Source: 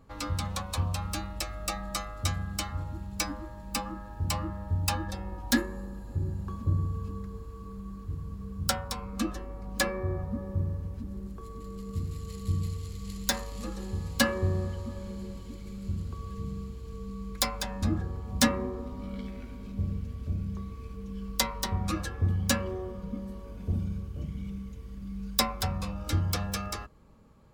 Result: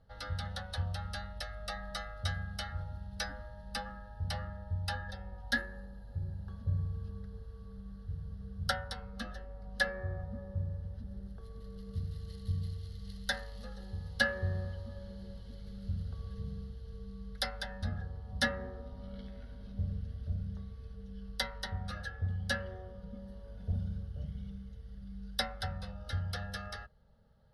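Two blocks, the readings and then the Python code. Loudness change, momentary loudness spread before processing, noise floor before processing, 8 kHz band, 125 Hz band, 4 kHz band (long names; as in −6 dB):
−6.5 dB, 12 LU, −43 dBFS, −15.5 dB, −6.0 dB, −5.5 dB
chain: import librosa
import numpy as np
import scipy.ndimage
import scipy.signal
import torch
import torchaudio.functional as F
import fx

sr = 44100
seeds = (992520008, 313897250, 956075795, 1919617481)

y = scipy.signal.sosfilt(scipy.signal.butter(8, 11000.0, 'lowpass', fs=sr, output='sos'), x)
y = fx.dynamic_eq(y, sr, hz=1800.0, q=1.5, threshold_db=-50.0, ratio=4.0, max_db=7)
y = fx.fixed_phaser(y, sr, hz=1600.0, stages=8)
y = fx.rider(y, sr, range_db=4, speed_s=2.0)
y = y * librosa.db_to_amplitude(-6.0)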